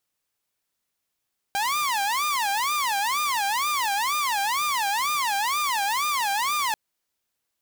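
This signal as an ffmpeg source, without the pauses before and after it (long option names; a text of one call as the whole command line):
ffmpeg -f lavfi -i "aevalsrc='0.1*(2*mod((1000.5*t-209.5/(2*PI*2.1)*sin(2*PI*2.1*t)),1)-1)':duration=5.19:sample_rate=44100" out.wav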